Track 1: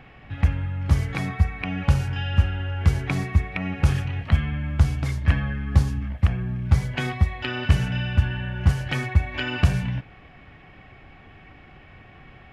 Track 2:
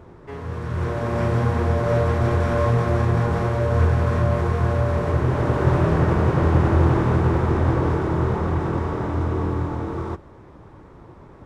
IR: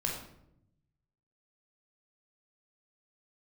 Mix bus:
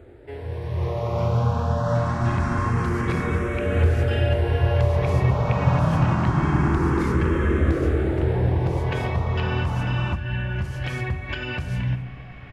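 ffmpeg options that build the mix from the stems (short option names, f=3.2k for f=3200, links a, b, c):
-filter_complex "[0:a]acompressor=threshold=-21dB:ratio=6,alimiter=limit=-22dB:level=0:latency=1:release=239,adelay=1950,volume=1dB,asplit=3[a][b][c];[b]volume=-8.5dB[d];[c]volume=-19.5dB[e];[1:a]asplit=2[f][g];[g]afreqshift=0.25[h];[f][h]amix=inputs=2:normalize=1,volume=0.5dB[i];[2:a]atrim=start_sample=2205[j];[d][j]afir=irnorm=-1:irlink=0[k];[e]aecho=0:1:262:1[l];[a][i][k][l]amix=inputs=4:normalize=0"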